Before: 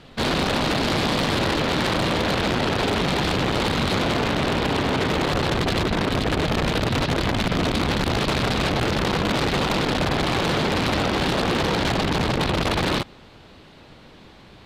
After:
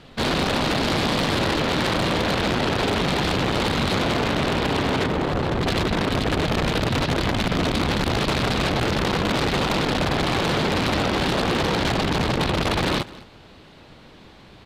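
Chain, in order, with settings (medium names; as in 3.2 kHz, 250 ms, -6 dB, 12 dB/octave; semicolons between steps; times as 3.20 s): 5.06–5.63 s: treble shelf 2.2 kHz -10.5 dB; delay 207 ms -20 dB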